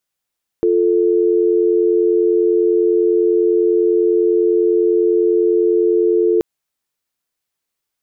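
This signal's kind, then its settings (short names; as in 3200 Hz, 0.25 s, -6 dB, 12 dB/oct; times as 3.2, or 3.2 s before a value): call progress tone dial tone, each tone -14 dBFS 5.78 s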